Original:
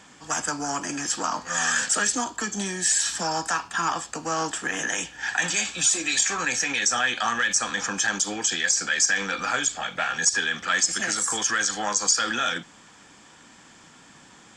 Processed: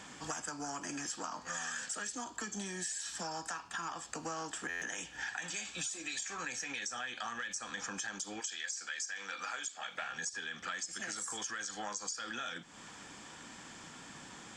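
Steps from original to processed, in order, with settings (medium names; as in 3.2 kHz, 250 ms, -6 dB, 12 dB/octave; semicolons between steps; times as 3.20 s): 8.39–10.01 s: high-pass 1.3 kHz -> 600 Hz 6 dB/octave; compression 8:1, threshold -38 dBFS, peak gain reduction 21.5 dB; buffer glitch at 4.69 s, samples 512, times 10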